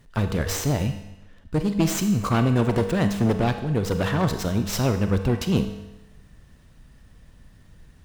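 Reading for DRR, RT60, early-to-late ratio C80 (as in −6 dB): 7.0 dB, 0.95 s, 10.5 dB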